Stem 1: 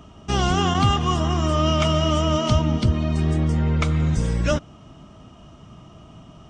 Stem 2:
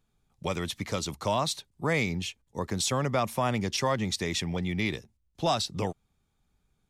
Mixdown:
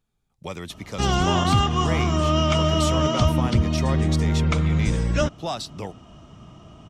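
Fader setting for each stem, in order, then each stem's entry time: -0.5, -2.5 dB; 0.70, 0.00 s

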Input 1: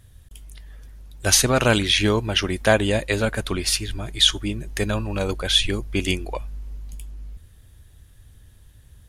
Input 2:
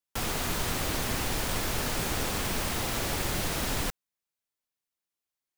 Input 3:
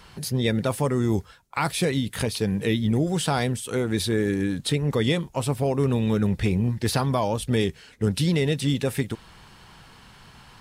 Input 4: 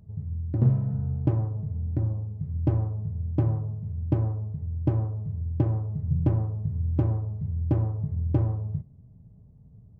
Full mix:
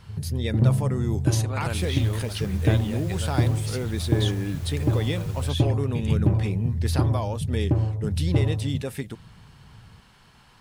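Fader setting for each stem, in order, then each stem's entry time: -16.0, -16.0, -6.0, +2.0 dB; 0.00, 1.60, 0.00, 0.00 s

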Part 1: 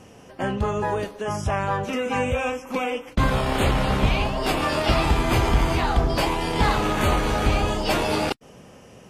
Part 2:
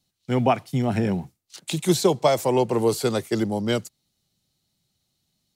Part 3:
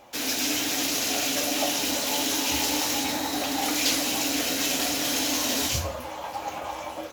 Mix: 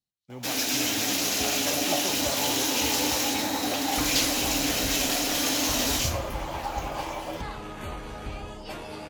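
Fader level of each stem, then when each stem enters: -15.5, -19.0, 0.0 dB; 0.80, 0.00, 0.30 s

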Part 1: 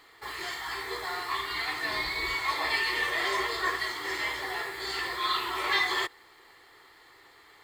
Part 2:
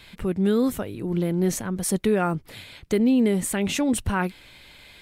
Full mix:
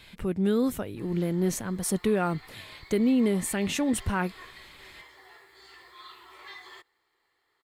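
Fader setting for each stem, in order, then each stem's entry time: -19.0, -3.5 dB; 0.75, 0.00 s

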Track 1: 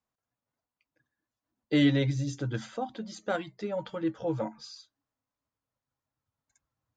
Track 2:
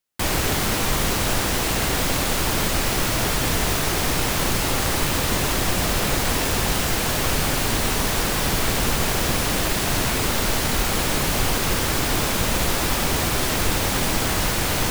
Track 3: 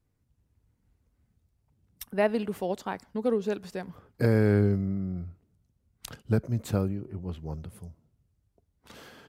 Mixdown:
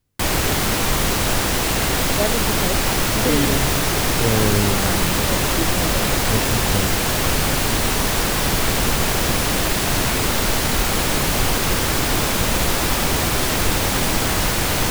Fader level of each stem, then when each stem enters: +1.0, +2.5, +2.0 dB; 1.55, 0.00, 0.00 s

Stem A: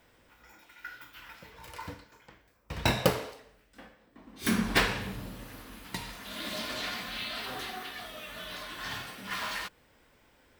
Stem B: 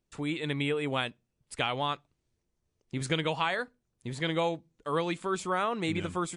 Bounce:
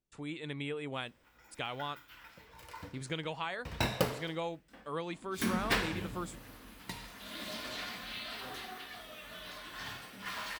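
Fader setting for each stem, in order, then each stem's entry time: -5.5, -8.5 dB; 0.95, 0.00 s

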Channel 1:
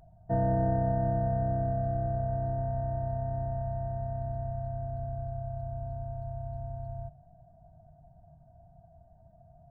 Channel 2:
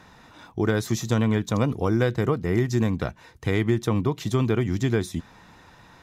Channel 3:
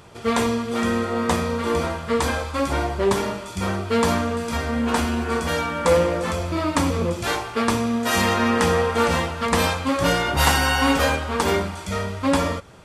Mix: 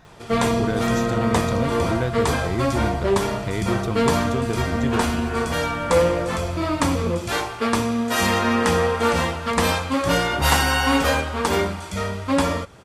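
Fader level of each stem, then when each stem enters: -0.5, -3.5, 0.0 dB; 0.00, 0.00, 0.05 s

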